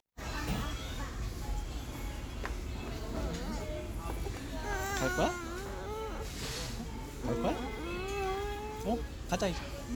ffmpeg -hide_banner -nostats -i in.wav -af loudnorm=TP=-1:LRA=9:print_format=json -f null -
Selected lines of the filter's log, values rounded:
"input_i" : "-37.2",
"input_tp" : "-17.4",
"input_lra" : "3.4",
"input_thresh" : "-47.2",